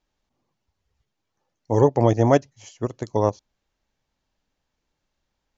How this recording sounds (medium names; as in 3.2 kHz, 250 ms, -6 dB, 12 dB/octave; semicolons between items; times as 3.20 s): noise floor -79 dBFS; spectral tilt -7.0 dB/octave